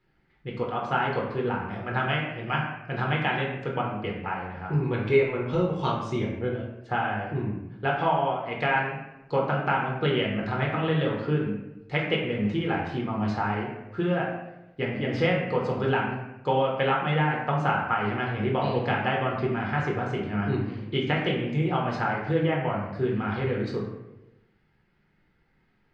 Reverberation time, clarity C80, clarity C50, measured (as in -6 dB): 0.95 s, 5.5 dB, 3.5 dB